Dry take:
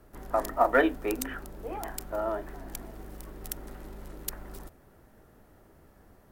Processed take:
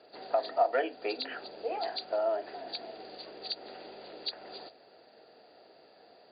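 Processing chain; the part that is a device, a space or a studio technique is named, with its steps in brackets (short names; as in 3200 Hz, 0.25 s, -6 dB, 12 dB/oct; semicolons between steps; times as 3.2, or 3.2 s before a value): hearing aid with frequency lowering (nonlinear frequency compression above 3200 Hz 4:1; compressor 2.5:1, threshold -34 dBFS, peak gain reduction 11.5 dB; speaker cabinet 380–6300 Hz, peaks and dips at 470 Hz +7 dB, 700 Hz +10 dB, 1100 Hz -7 dB, 2700 Hz +10 dB)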